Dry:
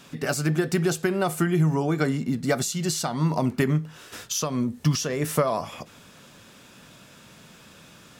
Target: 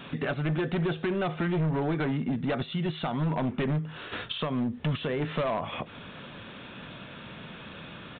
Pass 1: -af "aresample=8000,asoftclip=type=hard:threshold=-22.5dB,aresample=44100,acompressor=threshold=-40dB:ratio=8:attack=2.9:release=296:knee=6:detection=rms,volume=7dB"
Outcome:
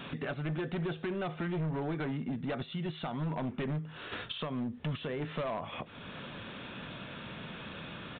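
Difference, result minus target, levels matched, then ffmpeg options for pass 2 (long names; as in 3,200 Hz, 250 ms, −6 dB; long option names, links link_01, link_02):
downward compressor: peak gain reduction +6.5 dB
-af "aresample=8000,asoftclip=type=hard:threshold=-22.5dB,aresample=44100,acompressor=threshold=-32.5dB:ratio=8:attack=2.9:release=296:knee=6:detection=rms,volume=7dB"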